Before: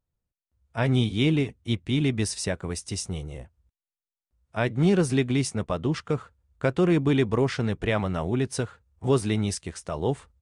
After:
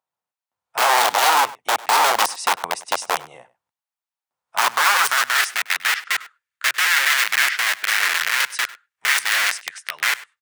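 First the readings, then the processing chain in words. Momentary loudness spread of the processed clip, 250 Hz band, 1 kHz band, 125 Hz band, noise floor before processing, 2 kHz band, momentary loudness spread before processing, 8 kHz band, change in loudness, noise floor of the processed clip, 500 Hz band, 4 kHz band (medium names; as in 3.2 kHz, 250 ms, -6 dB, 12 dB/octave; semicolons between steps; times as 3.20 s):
9 LU, under -20 dB, +17.5 dB, under -30 dB, under -85 dBFS, +17.5 dB, 12 LU, +12.5 dB, +7.5 dB, under -85 dBFS, -4.0 dB, +14.0 dB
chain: high-pass 94 Hz 24 dB/octave; tone controls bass +13 dB, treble -3 dB; integer overflow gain 16.5 dB; high-pass sweep 850 Hz -> 1.8 kHz, 4.42–5.53 s; echo from a far wall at 17 m, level -19 dB; trim +3.5 dB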